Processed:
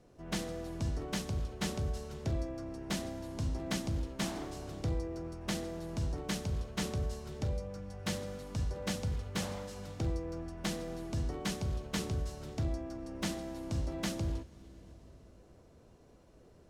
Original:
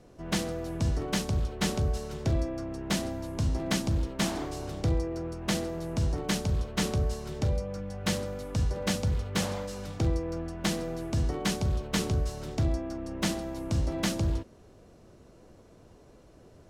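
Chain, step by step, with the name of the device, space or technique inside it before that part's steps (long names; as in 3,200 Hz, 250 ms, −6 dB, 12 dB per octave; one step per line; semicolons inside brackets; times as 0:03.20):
compressed reverb return (on a send at −5 dB: convolution reverb RT60 2.0 s, pre-delay 82 ms + downward compressor, threshold −38 dBFS, peak gain reduction 17.5 dB)
on the sum: level −7 dB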